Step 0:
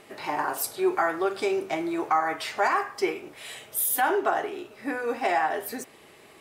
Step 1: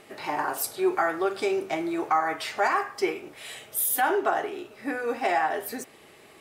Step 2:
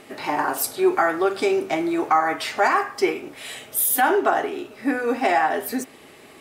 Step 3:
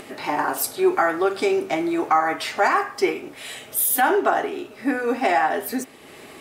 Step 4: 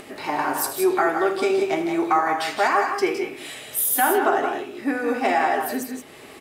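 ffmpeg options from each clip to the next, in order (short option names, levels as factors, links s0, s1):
-af "bandreject=f=1000:w=25"
-af "equalizer=f=260:w=5.2:g=7.5,volume=1.78"
-af "acompressor=mode=upward:threshold=0.0178:ratio=2.5"
-af "aecho=1:1:78|161|181:0.237|0.376|0.376,volume=0.841"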